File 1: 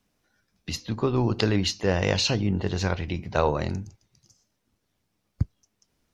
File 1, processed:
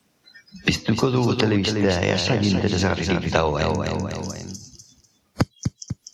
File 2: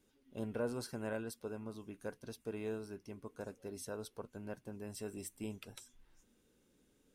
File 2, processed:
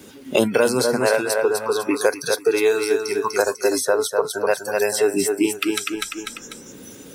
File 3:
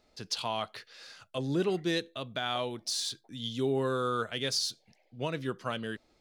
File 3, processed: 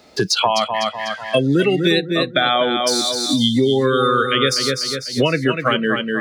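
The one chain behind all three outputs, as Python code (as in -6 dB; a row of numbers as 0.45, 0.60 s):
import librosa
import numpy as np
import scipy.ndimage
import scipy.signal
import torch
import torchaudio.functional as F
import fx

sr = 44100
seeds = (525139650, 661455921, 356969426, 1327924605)

p1 = scipy.signal.sosfilt(scipy.signal.butter(2, 100.0, 'highpass', fs=sr, output='sos'), x)
p2 = fx.noise_reduce_blind(p1, sr, reduce_db=25)
p3 = p2 + fx.echo_feedback(p2, sr, ms=247, feedback_pct=24, wet_db=-7.5, dry=0)
p4 = fx.band_squash(p3, sr, depth_pct=100)
y = p4 * 10.0 ** (-2 / 20.0) / np.max(np.abs(p4))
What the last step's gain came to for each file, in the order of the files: +4.0, +25.5, +15.0 dB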